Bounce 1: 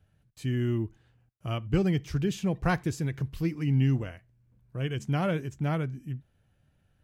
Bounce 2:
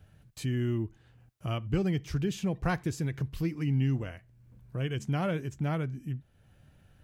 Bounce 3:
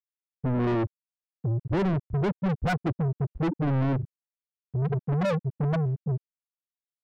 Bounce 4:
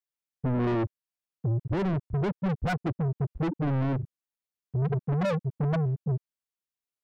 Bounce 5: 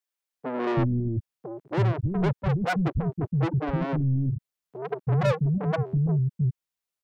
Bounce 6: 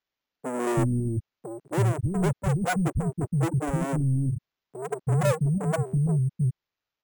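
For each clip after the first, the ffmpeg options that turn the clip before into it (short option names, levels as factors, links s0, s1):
-af "acompressor=threshold=0.00178:ratio=1.5,volume=2.66"
-filter_complex "[0:a]afftfilt=real='re*gte(hypot(re,im),0.178)':imag='im*gte(hypot(re,im),0.178)':win_size=1024:overlap=0.75,asplit=2[s0][s1];[s1]highpass=f=720:p=1,volume=70.8,asoftclip=type=tanh:threshold=0.119[s2];[s0][s2]amix=inputs=2:normalize=0,lowpass=f=2800:p=1,volume=0.501"
-af "alimiter=limit=0.0794:level=0:latency=1:release=464"
-filter_complex "[0:a]acrossover=split=280[s0][s1];[s0]adelay=330[s2];[s2][s1]amix=inputs=2:normalize=0,volume=1.58"
-af "acrusher=samples=5:mix=1:aa=0.000001"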